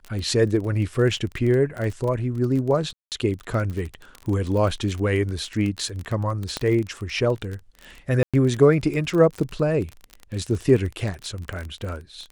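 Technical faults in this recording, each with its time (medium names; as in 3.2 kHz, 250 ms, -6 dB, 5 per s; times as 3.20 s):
crackle 26 per s -27 dBFS
2.93–3.12 s: dropout 188 ms
6.57 s: pop -11 dBFS
8.23–8.34 s: dropout 106 ms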